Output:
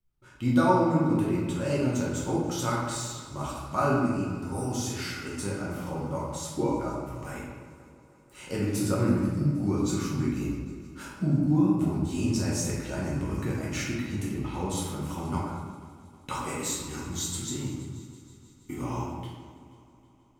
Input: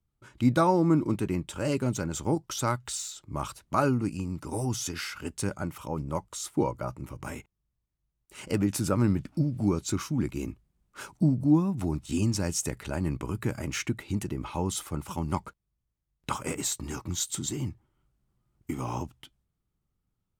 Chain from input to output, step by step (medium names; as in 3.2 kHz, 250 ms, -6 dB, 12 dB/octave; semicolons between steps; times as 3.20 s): multi-head delay 160 ms, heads second and third, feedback 54%, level -21 dB; reverberation RT60 1.3 s, pre-delay 5 ms, DRR -6 dB; trim -6.5 dB